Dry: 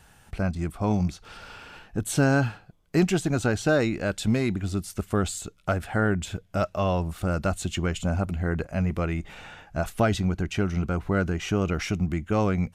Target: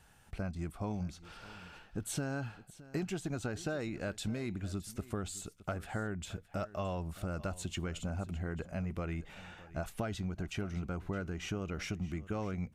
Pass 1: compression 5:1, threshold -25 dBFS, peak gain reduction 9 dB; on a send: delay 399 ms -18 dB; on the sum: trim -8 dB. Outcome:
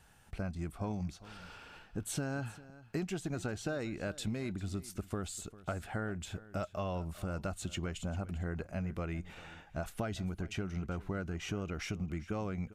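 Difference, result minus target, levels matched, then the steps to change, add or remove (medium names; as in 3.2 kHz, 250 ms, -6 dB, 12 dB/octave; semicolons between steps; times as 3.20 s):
echo 218 ms early
change: delay 617 ms -18 dB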